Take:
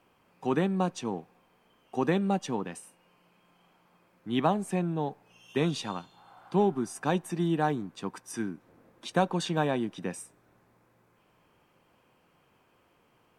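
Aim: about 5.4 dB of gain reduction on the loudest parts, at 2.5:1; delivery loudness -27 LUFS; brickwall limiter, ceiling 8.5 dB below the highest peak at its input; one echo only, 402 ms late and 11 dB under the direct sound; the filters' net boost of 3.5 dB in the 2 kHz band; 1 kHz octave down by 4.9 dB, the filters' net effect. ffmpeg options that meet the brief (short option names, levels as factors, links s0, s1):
-af "equalizer=f=1000:t=o:g=-8.5,equalizer=f=2000:t=o:g=7.5,acompressor=threshold=0.0355:ratio=2.5,alimiter=level_in=1.26:limit=0.0631:level=0:latency=1,volume=0.794,aecho=1:1:402:0.282,volume=3.16"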